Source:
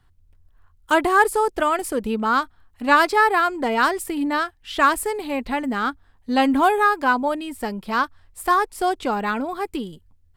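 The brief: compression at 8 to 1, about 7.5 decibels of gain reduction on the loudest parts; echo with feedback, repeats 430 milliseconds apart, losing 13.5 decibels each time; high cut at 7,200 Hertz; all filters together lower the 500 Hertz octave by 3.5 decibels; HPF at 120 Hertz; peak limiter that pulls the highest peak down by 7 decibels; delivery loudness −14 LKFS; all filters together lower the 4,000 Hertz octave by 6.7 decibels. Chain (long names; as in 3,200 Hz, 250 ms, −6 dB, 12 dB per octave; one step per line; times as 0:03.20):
high-pass filter 120 Hz
low-pass filter 7,200 Hz
parametric band 500 Hz −4.5 dB
parametric band 4,000 Hz −9 dB
downward compressor 8 to 1, threshold −20 dBFS
brickwall limiter −18.5 dBFS
repeating echo 430 ms, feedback 21%, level −13.5 dB
level +14 dB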